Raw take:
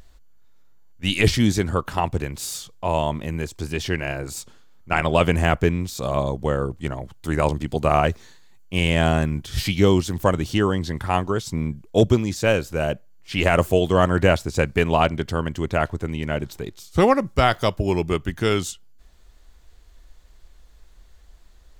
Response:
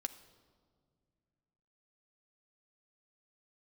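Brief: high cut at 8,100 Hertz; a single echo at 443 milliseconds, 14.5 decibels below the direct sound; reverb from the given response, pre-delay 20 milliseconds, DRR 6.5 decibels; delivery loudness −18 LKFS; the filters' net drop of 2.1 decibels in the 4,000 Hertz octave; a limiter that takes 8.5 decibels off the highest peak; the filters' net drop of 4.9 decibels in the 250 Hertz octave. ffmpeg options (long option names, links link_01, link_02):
-filter_complex "[0:a]lowpass=8100,equalizer=frequency=250:width_type=o:gain=-7.5,equalizer=frequency=4000:width_type=o:gain=-3,alimiter=limit=-13.5dB:level=0:latency=1,aecho=1:1:443:0.188,asplit=2[link_01][link_02];[1:a]atrim=start_sample=2205,adelay=20[link_03];[link_02][link_03]afir=irnorm=-1:irlink=0,volume=-5dB[link_04];[link_01][link_04]amix=inputs=2:normalize=0,volume=8dB"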